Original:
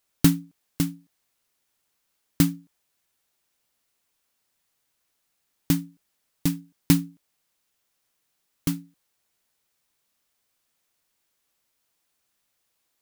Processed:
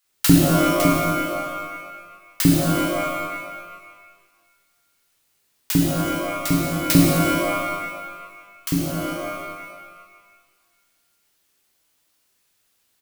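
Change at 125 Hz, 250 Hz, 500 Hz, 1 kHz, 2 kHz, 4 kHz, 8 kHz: +6.5, +7.5, +20.0, +22.5, +15.5, +9.5, +8.0 dB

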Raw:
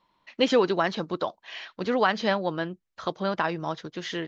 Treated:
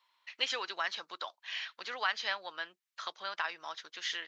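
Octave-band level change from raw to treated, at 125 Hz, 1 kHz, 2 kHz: under -35 dB, -10.5 dB, -4.5 dB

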